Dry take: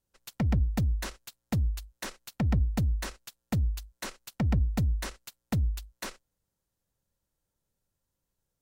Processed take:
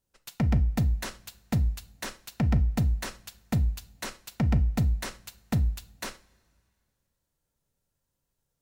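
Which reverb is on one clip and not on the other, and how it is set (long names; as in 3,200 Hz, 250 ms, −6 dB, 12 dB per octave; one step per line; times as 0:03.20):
coupled-rooms reverb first 0.35 s, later 2.2 s, from −22 dB, DRR 10 dB
level +1.5 dB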